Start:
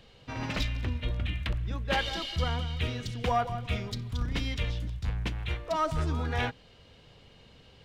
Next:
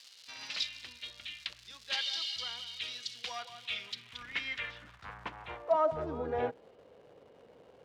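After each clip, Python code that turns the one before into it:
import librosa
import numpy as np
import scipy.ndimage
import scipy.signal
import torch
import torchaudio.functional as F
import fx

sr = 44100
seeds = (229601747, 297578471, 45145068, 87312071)

y = fx.dmg_crackle(x, sr, seeds[0], per_s=380.0, level_db=-39.0)
y = fx.filter_sweep_bandpass(y, sr, from_hz=4500.0, to_hz=490.0, start_s=3.36, end_s=6.26, q=2.1)
y = y * 10.0 ** (5.5 / 20.0)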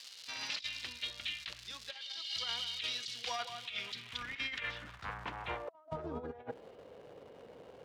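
y = fx.over_compress(x, sr, threshold_db=-40.0, ratio=-0.5)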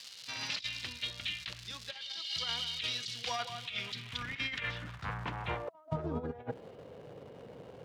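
y = fx.peak_eq(x, sr, hz=130.0, db=10.0, octaves=1.5)
y = y * 10.0 ** (2.0 / 20.0)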